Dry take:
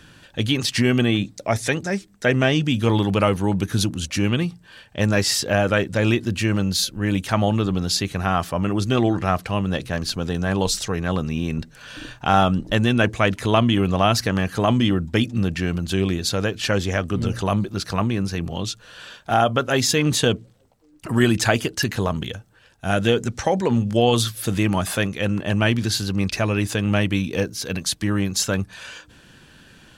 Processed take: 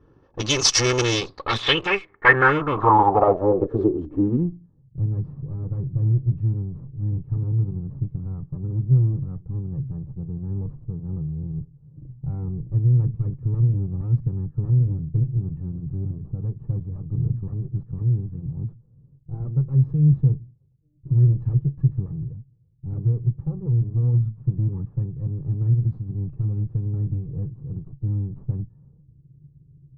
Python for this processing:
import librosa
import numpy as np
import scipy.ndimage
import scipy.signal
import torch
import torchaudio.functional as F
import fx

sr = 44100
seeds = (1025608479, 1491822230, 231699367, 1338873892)

p1 = fx.lower_of_two(x, sr, delay_ms=2.3)
p2 = fx.low_shelf(p1, sr, hz=120.0, db=-6.5)
p3 = 10.0 ** (-22.5 / 20.0) * (np.abs((p2 / 10.0 ** (-22.5 / 20.0) + 3.0) % 4.0 - 2.0) - 1.0)
p4 = p2 + (p3 * 10.0 ** (-8.5 / 20.0))
p5 = fx.filter_sweep_lowpass(p4, sr, from_hz=5800.0, to_hz=140.0, start_s=1.11, end_s=4.87, q=7.0)
p6 = fx.peak_eq(p5, sr, hz=1100.0, db=11.0, octaves=0.29)
p7 = fx.env_lowpass(p6, sr, base_hz=370.0, full_db=-17.5)
y = p7 * 10.0 ** (-1.5 / 20.0)